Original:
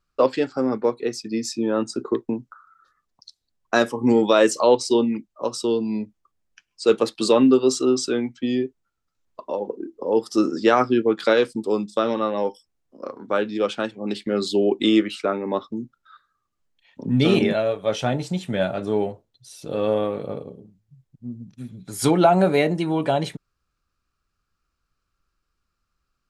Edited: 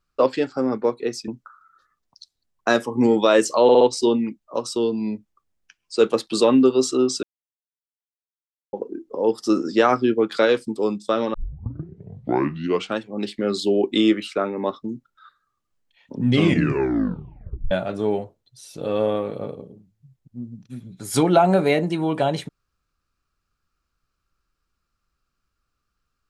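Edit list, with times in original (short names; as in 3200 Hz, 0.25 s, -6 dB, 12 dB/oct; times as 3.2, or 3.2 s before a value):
1.28–2.34 cut
4.69 stutter 0.06 s, 4 plays
8.11–9.61 mute
12.22 tape start 1.63 s
17.13 tape stop 1.46 s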